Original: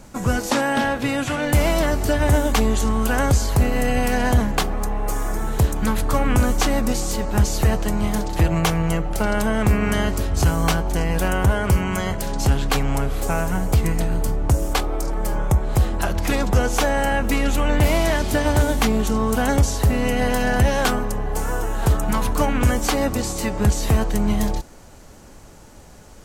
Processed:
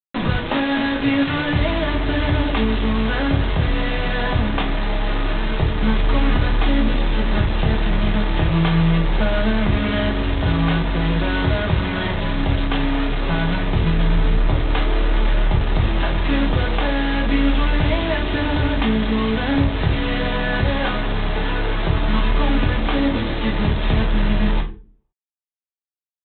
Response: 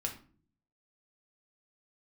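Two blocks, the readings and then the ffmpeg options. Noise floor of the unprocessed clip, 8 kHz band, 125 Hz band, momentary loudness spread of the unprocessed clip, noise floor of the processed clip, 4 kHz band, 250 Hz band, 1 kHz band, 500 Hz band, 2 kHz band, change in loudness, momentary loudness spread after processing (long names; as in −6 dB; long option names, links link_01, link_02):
−43 dBFS, below −40 dB, +0.5 dB, 5 LU, −73 dBFS, +3.5 dB, +2.0 dB, −1.0 dB, −1.5 dB, +2.0 dB, +0.5 dB, 3 LU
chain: -filter_complex "[0:a]acompressor=threshold=-25dB:ratio=2.5,aresample=8000,acrusher=bits=4:mix=0:aa=0.000001,aresample=44100[link_01];[1:a]atrim=start_sample=2205,asetrate=57330,aresample=44100[link_02];[link_01][link_02]afir=irnorm=-1:irlink=0,volume=5.5dB"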